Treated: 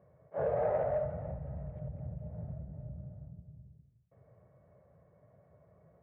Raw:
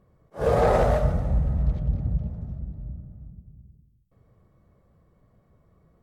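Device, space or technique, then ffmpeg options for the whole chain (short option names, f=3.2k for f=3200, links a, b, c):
bass amplifier: -af "acompressor=threshold=-33dB:ratio=5,highpass=f=80:w=0.5412,highpass=f=80:w=1.3066,equalizer=f=90:t=q:w=4:g=-4,equalizer=f=220:t=q:w=4:g=-9,equalizer=f=320:t=q:w=4:g=-9,equalizer=f=610:t=q:w=4:g=9,equalizer=f=1.2k:t=q:w=4:g=-6,lowpass=f=2.1k:w=0.5412,lowpass=f=2.1k:w=1.3066"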